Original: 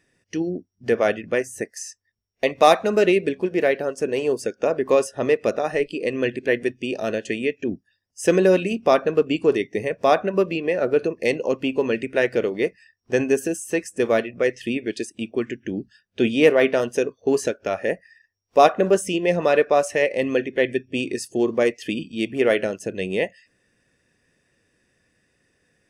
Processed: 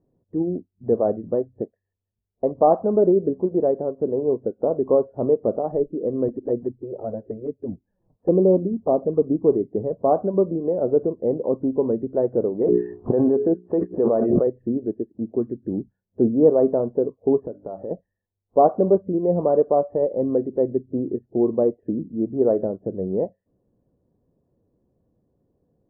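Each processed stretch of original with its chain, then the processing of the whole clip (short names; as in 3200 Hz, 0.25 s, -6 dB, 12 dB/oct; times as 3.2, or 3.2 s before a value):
6.28–9.23 upward compressor, threshold -37 dBFS + envelope flanger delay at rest 7.6 ms, full sweep at -15 dBFS
12.61–14.47 tilt +2.5 dB/oct + notches 60/120/180/240/300/360/420 Hz + fast leveller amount 100%
17.45–17.91 notches 50/100/150/200/250/300 Hz + doubler 16 ms -14 dB + compressor 2.5:1, threshold -30 dBFS
whole clip: steep low-pass 1000 Hz 36 dB/oct; tilt shelf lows +5 dB, about 760 Hz; gain -2 dB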